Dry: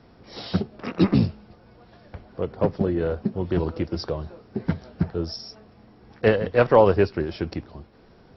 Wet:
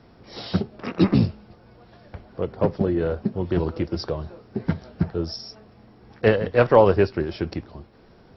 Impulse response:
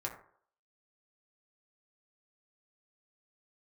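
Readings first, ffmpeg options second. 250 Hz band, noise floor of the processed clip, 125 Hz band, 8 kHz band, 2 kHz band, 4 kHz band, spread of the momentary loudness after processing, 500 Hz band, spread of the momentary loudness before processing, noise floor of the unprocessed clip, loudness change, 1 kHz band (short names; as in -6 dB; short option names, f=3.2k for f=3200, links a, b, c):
+1.0 dB, -52 dBFS, +1.0 dB, n/a, +1.0 dB, +1.0 dB, 16 LU, +0.5 dB, 16 LU, -53 dBFS, +1.0 dB, +0.5 dB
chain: -filter_complex "[0:a]asplit=2[a][b];[1:a]atrim=start_sample=2205,atrim=end_sample=3087[c];[b][c]afir=irnorm=-1:irlink=0,volume=-17.5dB[d];[a][d]amix=inputs=2:normalize=0"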